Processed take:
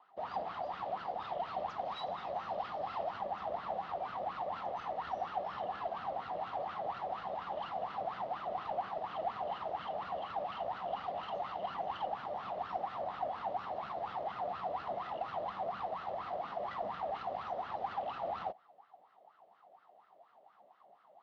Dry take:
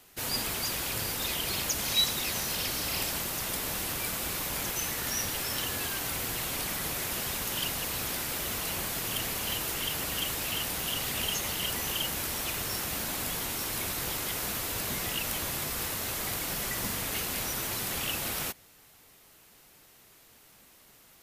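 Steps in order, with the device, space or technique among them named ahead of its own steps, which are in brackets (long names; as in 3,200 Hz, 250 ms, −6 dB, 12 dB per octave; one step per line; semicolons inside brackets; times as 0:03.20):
wah-wah guitar rig (LFO wah 4.2 Hz 580–1,400 Hz, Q 9.1; tube saturation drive 47 dB, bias 0.5; loudspeaker in its box 77–4,000 Hz, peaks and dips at 190 Hz +7 dB, 750 Hz +10 dB, 1,500 Hz −9 dB, 2,400 Hz −8 dB)
level +12.5 dB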